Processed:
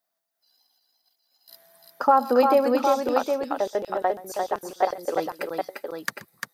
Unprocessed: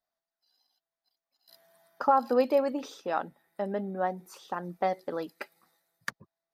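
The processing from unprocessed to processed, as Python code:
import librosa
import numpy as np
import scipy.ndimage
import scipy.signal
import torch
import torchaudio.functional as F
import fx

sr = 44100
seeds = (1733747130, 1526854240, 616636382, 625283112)

y = scipy.signal.sosfilt(scipy.signal.butter(2, 110.0, 'highpass', fs=sr, output='sos'), x)
y = fx.high_shelf(y, sr, hz=8900.0, db=10.0)
y = fx.filter_lfo_highpass(y, sr, shape='square', hz=6.8, low_hz=430.0, high_hz=5100.0, q=1.4, at=(2.94, 5.16))
y = fx.echo_multitap(y, sr, ms=(128, 348, 761), db=(-19.5, -4.5, -6.0))
y = y * librosa.db_to_amplitude(5.0)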